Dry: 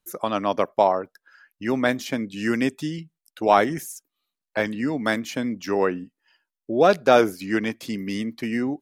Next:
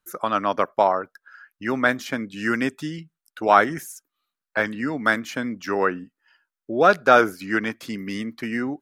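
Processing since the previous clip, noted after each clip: peaking EQ 1.4 kHz +10.5 dB 0.79 oct; trim -2 dB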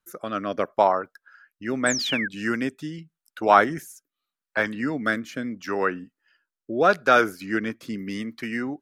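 rotary cabinet horn 0.8 Hz; painted sound fall, 1.86–2.28 s, 1.5–8.7 kHz -28 dBFS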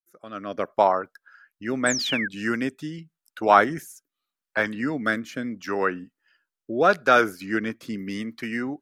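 fade-in on the opening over 0.79 s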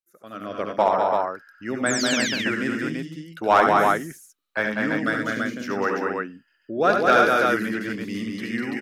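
multi-tap echo 71/90/198/242/335 ms -6.5/-8.5/-3.5/-8.5/-3.5 dB; hard clipper -6.5 dBFS, distortion -25 dB; trim -1.5 dB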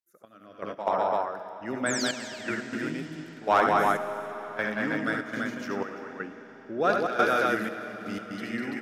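trance gate "xx...x.xxxxx.xx" 121 bpm -12 dB; reverberation RT60 5.3 s, pre-delay 55 ms, DRR 11 dB; trim -5 dB

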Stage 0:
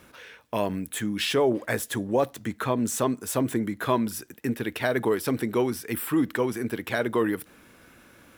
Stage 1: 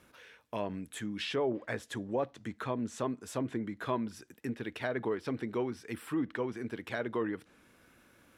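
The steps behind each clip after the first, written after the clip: low-pass that closes with the level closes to 2.8 kHz, closed at -20.5 dBFS; trim -9 dB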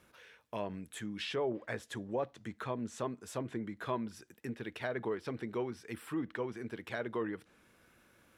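peaking EQ 270 Hz -6 dB 0.21 oct; trim -2.5 dB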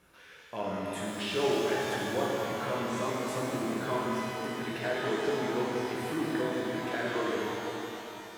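pitch-shifted reverb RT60 3.2 s, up +12 st, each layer -8 dB, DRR -6 dB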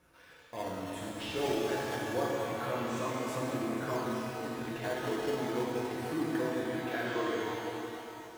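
in parallel at -5 dB: decimation with a swept rate 10×, swing 160% 0.24 Hz; on the sum: comb of notches 200 Hz; trim -4.5 dB

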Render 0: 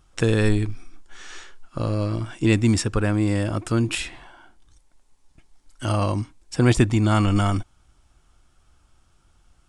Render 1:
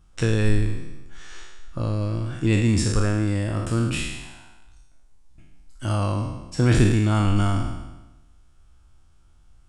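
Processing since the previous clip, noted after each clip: spectral sustain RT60 1.07 s; bass shelf 160 Hz +8.5 dB; trim -6 dB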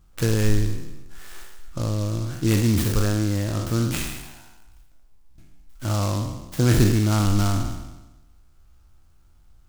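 delay time shaken by noise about 5 kHz, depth 0.074 ms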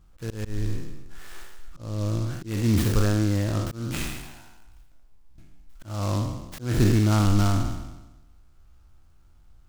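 treble shelf 5 kHz -5 dB; slow attack 320 ms

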